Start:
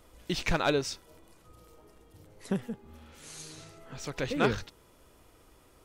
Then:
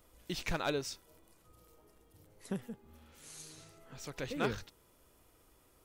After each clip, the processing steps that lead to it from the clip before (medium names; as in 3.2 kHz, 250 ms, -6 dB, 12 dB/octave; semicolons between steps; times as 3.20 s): treble shelf 11 kHz +11.5 dB; trim -7.5 dB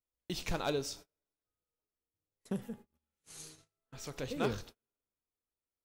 two-slope reverb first 0.4 s, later 3 s, from -19 dB, DRR 12 dB; dynamic bell 1.8 kHz, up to -6 dB, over -54 dBFS, Q 1.2; gate -51 dBFS, range -35 dB; trim +1 dB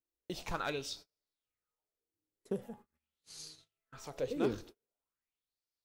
sweeping bell 0.44 Hz 310–4800 Hz +14 dB; trim -5.5 dB